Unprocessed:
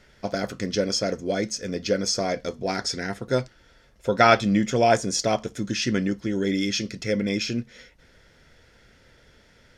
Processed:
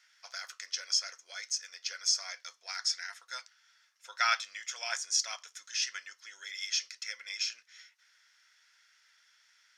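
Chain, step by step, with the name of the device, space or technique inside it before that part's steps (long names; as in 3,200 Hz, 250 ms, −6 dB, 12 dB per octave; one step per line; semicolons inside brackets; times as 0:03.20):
headphones lying on a table (high-pass filter 1,200 Hz 24 dB per octave; parametric band 5,800 Hz +7 dB 0.59 octaves)
level −7.5 dB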